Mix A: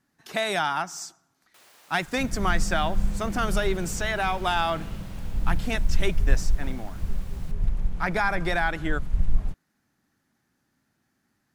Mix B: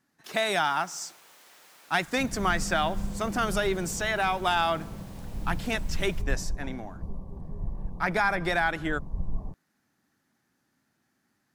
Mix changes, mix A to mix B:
first sound: entry -1.30 s; second sound: add brick-wall FIR low-pass 1.2 kHz; master: add bass shelf 81 Hz -11 dB

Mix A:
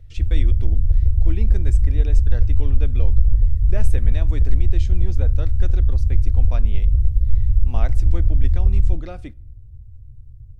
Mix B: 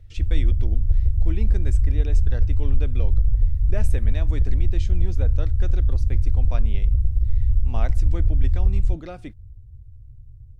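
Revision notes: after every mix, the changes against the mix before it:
reverb: off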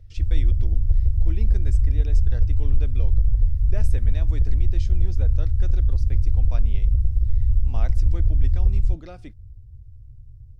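speech -5.0 dB; master: add peaking EQ 5.1 kHz +6.5 dB 0.46 oct

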